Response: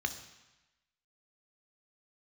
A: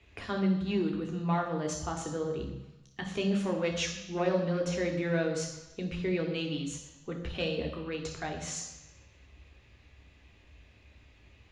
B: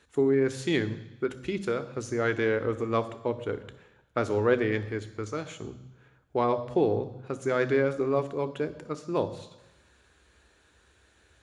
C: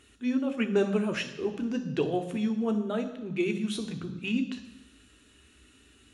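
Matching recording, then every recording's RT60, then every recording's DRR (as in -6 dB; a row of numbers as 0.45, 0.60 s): C; 1.0, 1.0, 1.0 s; 2.0, 11.5, 7.0 dB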